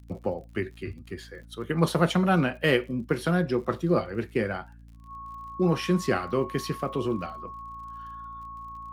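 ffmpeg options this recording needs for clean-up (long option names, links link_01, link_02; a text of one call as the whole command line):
ffmpeg -i in.wav -af "adeclick=threshold=4,bandreject=frequency=56.9:width_type=h:width=4,bandreject=frequency=113.8:width_type=h:width=4,bandreject=frequency=170.7:width_type=h:width=4,bandreject=frequency=227.6:width_type=h:width=4,bandreject=frequency=284.5:width_type=h:width=4,bandreject=frequency=1100:width=30" out.wav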